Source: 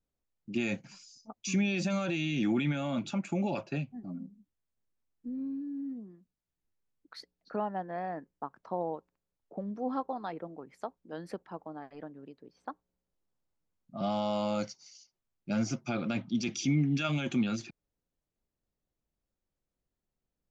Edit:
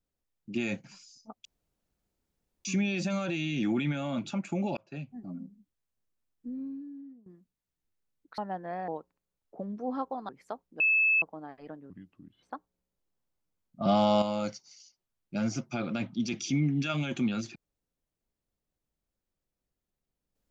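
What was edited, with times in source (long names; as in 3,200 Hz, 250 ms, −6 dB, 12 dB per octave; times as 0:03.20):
0:01.45: splice in room tone 1.20 s
0:03.57–0:03.97: fade in
0:05.30–0:06.06: fade out, to −19 dB
0:07.18–0:07.63: remove
0:08.13–0:08.86: remove
0:10.27–0:10.62: remove
0:11.13–0:11.55: beep over 2,610 Hz −21 dBFS
0:12.23–0:12.58: play speed 66%
0:13.96–0:14.37: clip gain +7.5 dB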